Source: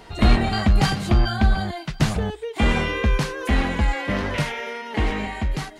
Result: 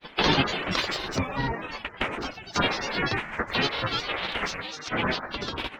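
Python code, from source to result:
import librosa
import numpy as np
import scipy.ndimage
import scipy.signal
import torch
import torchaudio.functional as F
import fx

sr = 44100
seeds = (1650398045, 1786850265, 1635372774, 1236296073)

y = fx.high_shelf_res(x, sr, hz=4000.0, db=-12.5, q=3.0)
y = fx.echo_feedback(y, sr, ms=87, feedback_pct=54, wet_db=-16)
y = fx.granulator(y, sr, seeds[0], grain_ms=100.0, per_s=20.0, spray_ms=100.0, spread_st=12)
y = fx.spec_gate(y, sr, threshold_db=-10, keep='weak')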